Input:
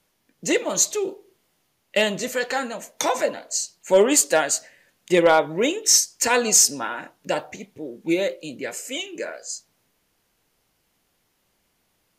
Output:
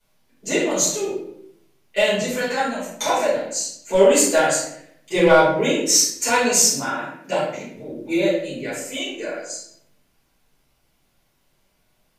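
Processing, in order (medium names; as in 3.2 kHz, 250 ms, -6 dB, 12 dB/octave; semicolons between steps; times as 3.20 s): 6.10–7.73 s: high-pass 100 Hz; simulated room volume 140 m³, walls mixed, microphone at 4.9 m; trim -12.5 dB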